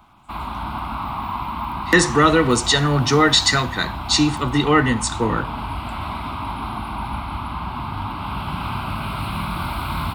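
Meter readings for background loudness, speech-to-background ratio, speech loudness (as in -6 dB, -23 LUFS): -28.0 LUFS, 10.5 dB, -17.5 LUFS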